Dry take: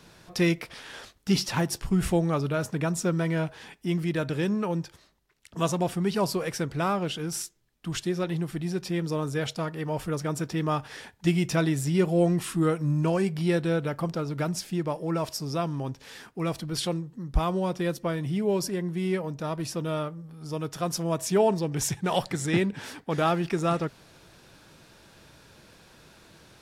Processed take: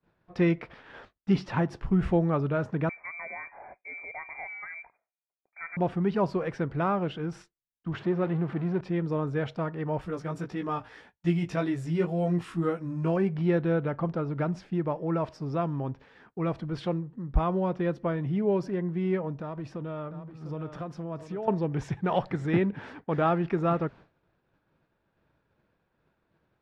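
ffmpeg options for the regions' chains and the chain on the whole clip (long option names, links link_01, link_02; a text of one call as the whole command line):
ffmpeg -i in.wav -filter_complex "[0:a]asettb=1/sr,asplit=3[link_01][link_02][link_03];[link_01]atrim=end=2.894[link_04];[link_02]atrim=start=2.89:end=5.77,asetpts=PTS-STARTPTS,afade=type=in:duration=0.004:curve=qsin,afade=type=out:start_time=2.876:duration=0.004:curve=qsin,equalizer=frequency=1800:width=3.8:gain=9.5,acompressor=threshold=-40dB:ratio=2:attack=3.2:release=140:knee=1:detection=peak,lowpass=frequency=2100:width_type=q:width=0.5098,lowpass=frequency=2100:width_type=q:width=0.6013,lowpass=frequency=2100:width_type=q:width=0.9,lowpass=frequency=2100:width_type=q:width=2.563,afreqshift=-2500[link_05];[link_03]atrim=start=5.766[link_06];[link_04][link_05]acrossfade=duration=0.004:curve1=hsin:curve2=qsin[link_07];[link_07][link_06]acrossfade=duration=0.004:curve1=qsin:curve2=hsin,asettb=1/sr,asplit=3[link_08][link_09][link_10];[link_08]atrim=end=7.934[link_11];[link_09]atrim=start=7.93:end=8.81,asetpts=PTS-STARTPTS,afade=type=in:duration=0.004:curve=qsin,afade=type=out:start_time=0.876:duration=0.004:curve=qsin,aeval=exprs='val(0)+0.5*0.0224*sgn(val(0))':channel_layout=same,highpass=120,equalizer=frequency=9200:width=0.52:gain=-12[link_12];[link_10]atrim=start=8.806[link_13];[link_11][link_12]acrossfade=duration=0.004:curve1=hsin:curve2=qsin[link_14];[link_14][link_13]acrossfade=duration=0.004:curve1=qsin:curve2=hsin,asettb=1/sr,asplit=3[link_15][link_16][link_17];[link_15]atrim=end=10.014[link_18];[link_16]atrim=start=10.01:end=13.17,asetpts=PTS-STARTPTS,afade=type=in:duration=0.004:curve=qsin,afade=type=out:start_time=3.156:duration=0.004:curve=qsin,aemphasis=mode=production:type=75fm,flanger=delay=16:depth=2.1:speed=1.8[link_19];[link_17]atrim=start=13.166[link_20];[link_18][link_19]acrossfade=duration=0.004:curve1=hsin:curve2=qsin[link_21];[link_21][link_20]acrossfade=duration=0.004:curve1=qsin:curve2=hsin,asettb=1/sr,asplit=3[link_22][link_23][link_24];[link_22]atrim=end=19.414[link_25];[link_23]atrim=start=19.41:end=21.48,asetpts=PTS-STARTPTS,afade=type=in:duration=0.004:curve=qsin,afade=type=out:start_time=2.066:duration=0.004:curve=qsin,acompressor=threshold=-32dB:ratio=6:attack=3.2:release=140:knee=1:detection=peak,aecho=1:1:699:0.299,atrim=end_sample=91287[link_26];[link_24]atrim=start=21.476[link_27];[link_25][link_26]acrossfade=duration=0.004:curve1=hsin:curve2=qsin[link_28];[link_28][link_27]acrossfade=duration=0.004:curve1=qsin:curve2=hsin,lowpass=1800,agate=range=-33dB:threshold=-43dB:ratio=3:detection=peak" out.wav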